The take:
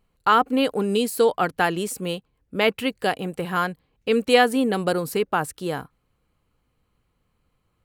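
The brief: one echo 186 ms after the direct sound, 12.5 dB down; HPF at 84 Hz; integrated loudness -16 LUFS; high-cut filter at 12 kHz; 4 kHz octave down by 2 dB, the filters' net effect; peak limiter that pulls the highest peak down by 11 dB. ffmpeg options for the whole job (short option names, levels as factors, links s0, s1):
-af "highpass=84,lowpass=12000,equalizer=f=4000:t=o:g=-3,alimiter=limit=0.178:level=0:latency=1,aecho=1:1:186:0.237,volume=3.35"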